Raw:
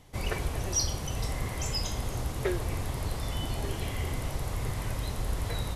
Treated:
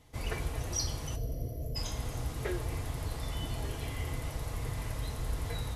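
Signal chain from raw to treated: time-frequency box 1.15–1.76 s, 730–11000 Hz -29 dB; comb of notches 190 Hz; two-slope reverb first 0.25 s, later 2.7 s, from -17 dB, DRR 10 dB; trim -3.5 dB

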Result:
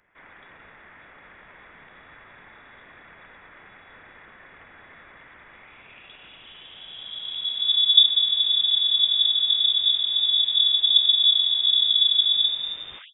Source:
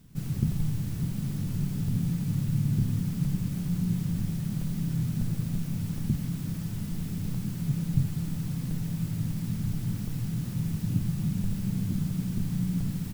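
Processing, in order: tape stop on the ending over 0.97 s; high-pass sweep 1.7 kHz -> 140 Hz, 5.47–8.02 s; frequency inversion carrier 3.6 kHz; trim +3.5 dB

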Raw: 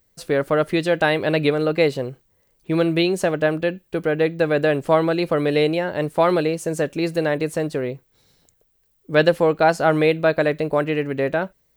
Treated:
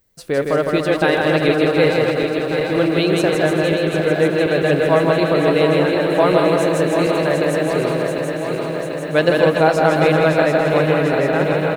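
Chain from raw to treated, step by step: backward echo that repeats 372 ms, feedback 84%, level -6.5 dB; on a send: bouncing-ball echo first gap 160 ms, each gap 0.8×, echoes 5; on the sum: endings held to a fixed fall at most 270 dB/s

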